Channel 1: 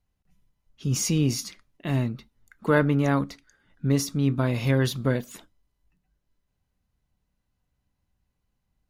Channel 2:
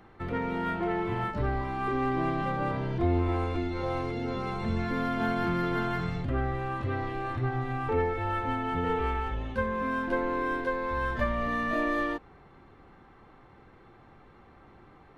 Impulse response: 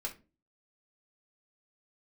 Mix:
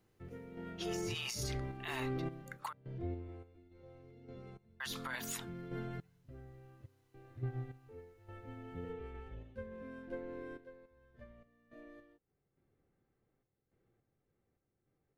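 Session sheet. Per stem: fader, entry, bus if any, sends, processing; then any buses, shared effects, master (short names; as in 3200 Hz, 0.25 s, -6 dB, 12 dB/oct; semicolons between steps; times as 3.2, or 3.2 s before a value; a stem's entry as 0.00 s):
0.0 dB, 0.00 s, muted 2.73–4.8, no send, steep high-pass 820 Hz; negative-ratio compressor -39 dBFS, ratio -1
2.27 s -1.5 dB -> 2.79 s -11.5 dB, 0.00 s, no send, graphic EQ 125/500/1000/4000 Hz +7/+6/-11/-3 dB; random-step tremolo, depth 90%; upward expander 1.5:1, over -46 dBFS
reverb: off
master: limiter -30 dBFS, peak gain reduction 10.5 dB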